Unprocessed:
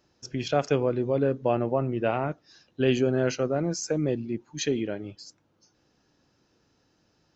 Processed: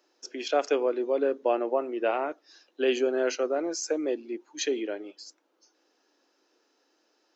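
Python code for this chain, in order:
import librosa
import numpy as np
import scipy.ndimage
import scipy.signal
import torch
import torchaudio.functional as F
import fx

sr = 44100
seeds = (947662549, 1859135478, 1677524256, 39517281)

y = scipy.signal.sosfilt(scipy.signal.butter(6, 300.0, 'highpass', fs=sr, output='sos'), x)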